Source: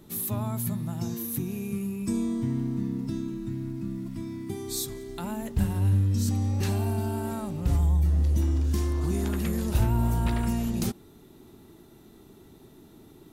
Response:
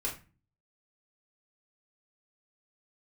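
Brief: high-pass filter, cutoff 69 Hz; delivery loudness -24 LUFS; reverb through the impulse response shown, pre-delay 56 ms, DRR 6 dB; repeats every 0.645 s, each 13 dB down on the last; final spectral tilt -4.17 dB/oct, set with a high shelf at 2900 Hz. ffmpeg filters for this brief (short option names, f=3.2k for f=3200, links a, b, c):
-filter_complex "[0:a]highpass=69,highshelf=f=2.9k:g=7,aecho=1:1:645|1290|1935:0.224|0.0493|0.0108,asplit=2[a][b];[1:a]atrim=start_sample=2205,adelay=56[c];[b][c]afir=irnorm=-1:irlink=0,volume=-9.5dB[d];[a][d]amix=inputs=2:normalize=0,volume=4.5dB"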